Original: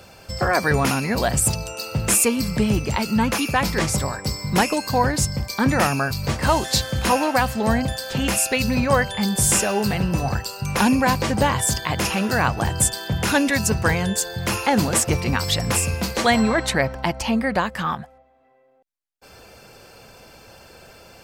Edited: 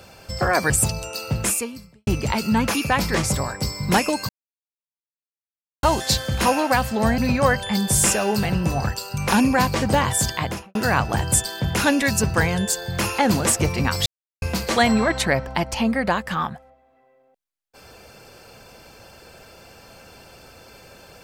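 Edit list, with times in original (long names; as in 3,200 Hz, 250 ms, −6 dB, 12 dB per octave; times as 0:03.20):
0:00.70–0:01.34: remove
0:01.98–0:02.71: fade out quadratic
0:04.93–0:06.47: silence
0:07.82–0:08.66: remove
0:11.84–0:12.23: fade out and dull
0:15.54–0:15.90: silence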